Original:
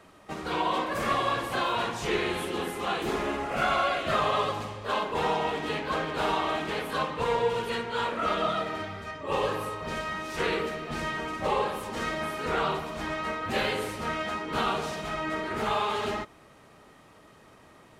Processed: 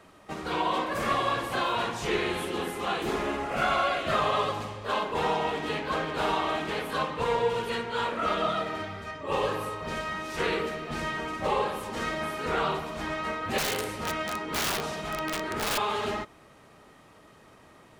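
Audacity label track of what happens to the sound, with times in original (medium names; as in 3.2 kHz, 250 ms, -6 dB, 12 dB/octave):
13.580000	15.780000	integer overflow gain 22.5 dB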